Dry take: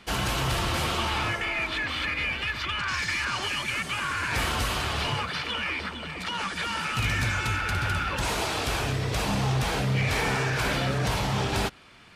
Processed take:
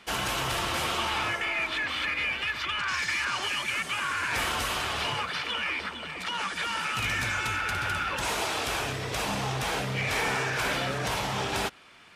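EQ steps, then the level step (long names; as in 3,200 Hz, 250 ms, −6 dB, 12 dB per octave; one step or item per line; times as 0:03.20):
low-shelf EQ 230 Hz −11 dB
parametric band 4,400 Hz −3 dB 0.28 octaves
0.0 dB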